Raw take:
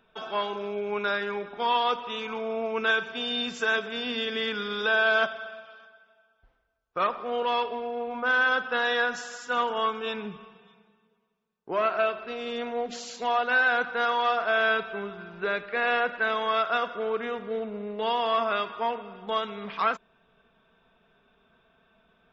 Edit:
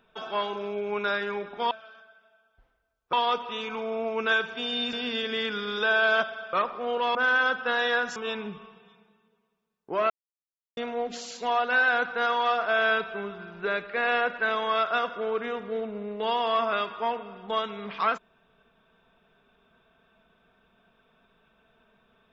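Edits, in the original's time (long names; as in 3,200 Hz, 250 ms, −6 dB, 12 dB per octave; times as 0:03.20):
0:03.51–0:03.96: remove
0:05.56–0:06.98: move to 0:01.71
0:07.60–0:08.21: remove
0:09.22–0:09.95: remove
0:11.89–0:12.56: silence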